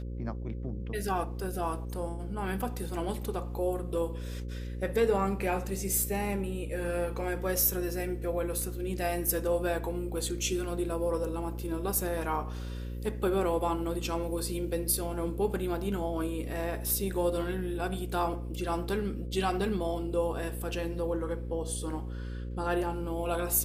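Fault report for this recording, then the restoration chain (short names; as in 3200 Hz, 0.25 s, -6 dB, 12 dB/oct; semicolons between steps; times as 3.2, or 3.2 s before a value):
buzz 60 Hz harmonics 9 -37 dBFS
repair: de-hum 60 Hz, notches 9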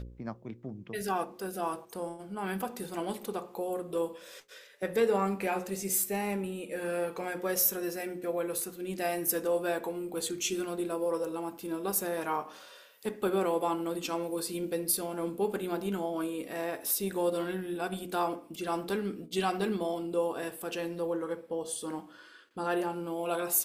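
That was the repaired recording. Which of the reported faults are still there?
none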